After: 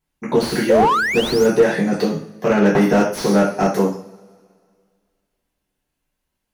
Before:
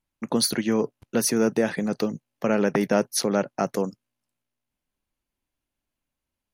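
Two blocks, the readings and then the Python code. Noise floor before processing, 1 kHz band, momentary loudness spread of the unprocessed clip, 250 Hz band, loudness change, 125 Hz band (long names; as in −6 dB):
below −85 dBFS, +12.0 dB, 7 LU, +6.5 dB, +7.5 dB, +9.0 dB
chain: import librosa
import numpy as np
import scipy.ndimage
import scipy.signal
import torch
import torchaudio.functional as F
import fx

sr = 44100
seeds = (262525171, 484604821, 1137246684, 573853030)

y = fx.rev_double_slope(x, sr, seeds[0], early_s=0.47, late_s=2.1, knee_db=-25, drr_db=-7.5)
y = fx.spec_paint(y, sr, seeds[1], shape='rise', start_s=0.69, length_s=0.77, low_hz=490.0, high_hz=7000.0, level_db=-13.0)
y = fx.slew_limit(y, sr, full_power_hz=200.0)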